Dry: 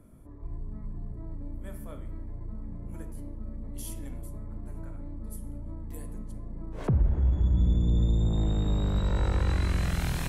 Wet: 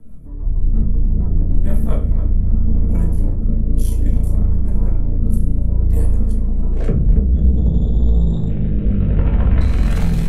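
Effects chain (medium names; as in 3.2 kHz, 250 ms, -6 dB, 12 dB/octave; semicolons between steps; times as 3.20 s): 8.48–9.61 s: CVSD coder 16 kbps; bass shelf 240 Hz +11.5 dB; peak limiter -23.5 dBFS, peak gain reduction 18.5 dB; level rider gain up to 15.5 dB; saturation -15.5 dBFS, distortion -13 dB; rotary cabinet horn 6.3 Hz, later 0.6 Hz, at 1.61 s; tape echo 283 ms, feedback 40%, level -11 dB, low-pass 2.3 kHz; simulated room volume 160 m³, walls furnished, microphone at 1.6 m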